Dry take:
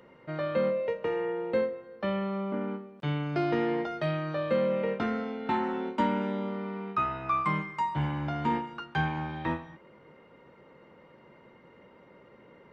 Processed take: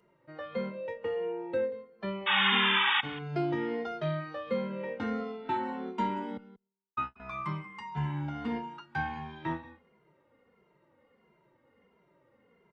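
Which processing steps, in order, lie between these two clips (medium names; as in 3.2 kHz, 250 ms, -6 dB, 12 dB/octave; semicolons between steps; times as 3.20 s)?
spectral noise reduction 8 dB; 2.26–3.01 s: painted sound noise 780–3700 Hz -22 dBFS; 6.37–7.20 s: gate -28 dBFS, range -54 dB; on a send: delay 184 ms -18.5 dB; on the sum: endless flanger 2.5 ms -1.5 Hz; trim -1 dB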